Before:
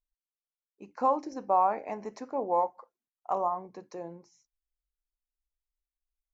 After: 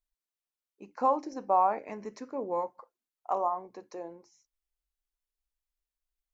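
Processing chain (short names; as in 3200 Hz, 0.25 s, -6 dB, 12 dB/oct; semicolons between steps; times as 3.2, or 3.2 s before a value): bell 110 Hz -12 dB 0.55 oct, from 1.79 s 760 Hz, from 2.79 s 160 Hz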